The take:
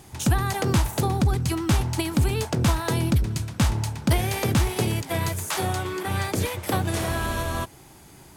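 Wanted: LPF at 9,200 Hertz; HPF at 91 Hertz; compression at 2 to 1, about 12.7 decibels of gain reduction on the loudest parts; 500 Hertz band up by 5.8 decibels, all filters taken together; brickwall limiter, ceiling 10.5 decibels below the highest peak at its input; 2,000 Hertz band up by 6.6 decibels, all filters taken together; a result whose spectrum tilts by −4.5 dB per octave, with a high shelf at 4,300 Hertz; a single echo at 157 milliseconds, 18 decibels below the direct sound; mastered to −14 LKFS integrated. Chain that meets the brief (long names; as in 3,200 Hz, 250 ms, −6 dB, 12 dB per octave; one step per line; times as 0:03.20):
high-pass filter 91 Hz
low-pass filter 9,200 Hz
parametric band 500 Hz +7.5 dB
parametric band 2,000 Hz +7 dB
high-shelf EQ 4,300 Hz +4.5 dB
downward compressor 2 to 1, threshold −41 dBFS
brickwall limiter −28 dBFS
single-tap delay 157 ms −18 dB
level +23.5 dB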